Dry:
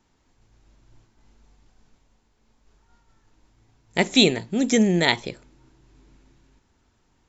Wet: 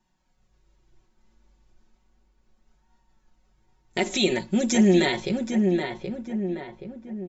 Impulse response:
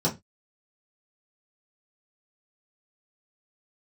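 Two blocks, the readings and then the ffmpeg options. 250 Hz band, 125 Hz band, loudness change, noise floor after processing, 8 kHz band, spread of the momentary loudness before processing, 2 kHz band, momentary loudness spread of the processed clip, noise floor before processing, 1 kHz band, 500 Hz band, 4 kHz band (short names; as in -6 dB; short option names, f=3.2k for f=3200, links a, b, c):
+1.0 dB, 0.0 dB, -3.5 dB, -69 dBFS, n/a, 11 LU, -4.0 dB, 16 LU, -66 dBFS, -2.0 dB, +0.5 dB, -6.0 dB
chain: -filter_complex "[0:a]agate=range=-9dB:threshold=-46dB:ratio=16:detection=peak,flanger=delay=1.1:depth=2.4:regen=-42:speed=0.33:shape=sinusoidal,alimiter=limit=-18.5dB:level=0:latency=1:release=55,aecho=1:1:5.4:0.75,asplit=2[a][b];[b]adelay=775,lowpass=f=1.8k:p=1,volume=-4dB,asplit=2[c][d];[d]adelay=775,lowpass=f=1.8k:p=1,volume=0.49,asplit=2[e][f];[f]adelay=775,lowpass=f=1.8k:p=1,volume=0.49,asplit=2[g][h];[h]adelay=775,lowpass=f=1.8k:p=1,volume=0.49,asplit=2[i][j];[j]adelay=775,lowpass=f=1.8k:p=1,volume=0.49,asplit=2[k][l];[l]adelay=775,lowpass=f=1.8k:p=1,volume=0.49[m];[a][c][e][g][i][k][m]amix=inputs=7:normalize=0,volume=4dB"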